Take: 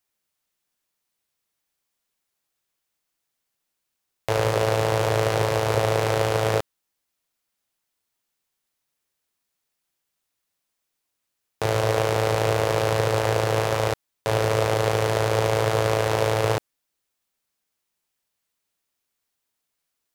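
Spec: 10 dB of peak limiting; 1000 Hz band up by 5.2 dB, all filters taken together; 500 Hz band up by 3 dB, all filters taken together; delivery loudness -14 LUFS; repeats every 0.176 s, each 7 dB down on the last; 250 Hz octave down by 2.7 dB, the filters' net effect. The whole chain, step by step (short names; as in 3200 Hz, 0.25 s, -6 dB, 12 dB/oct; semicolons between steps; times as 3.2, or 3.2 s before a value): bell 250 Hz -7.5 dB; bell 500 Hz +3.5 dB; bell 1000 Hz +6 dB; limiter -14 dBFS; feedback echo 0.176 s, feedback 45%, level -7 dB; gain +12.5 dB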